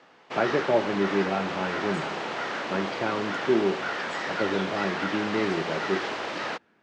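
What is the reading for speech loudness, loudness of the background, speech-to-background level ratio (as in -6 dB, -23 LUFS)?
-29.0 LUFS, -31.0 LUFS, 2.0 dB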